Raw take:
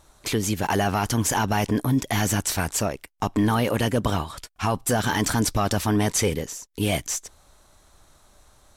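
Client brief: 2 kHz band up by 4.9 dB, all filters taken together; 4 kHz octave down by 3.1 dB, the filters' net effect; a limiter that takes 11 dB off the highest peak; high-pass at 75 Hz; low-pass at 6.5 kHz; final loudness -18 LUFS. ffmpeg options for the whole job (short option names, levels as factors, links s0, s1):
-af "highpass=75,lowpass=6500,equalizer=f=2000:t=o:g=8,equalizer=f=4000:t=o:g=-7.5,volume=4.22,alimiter=limit=0.473:level=0:latency=1"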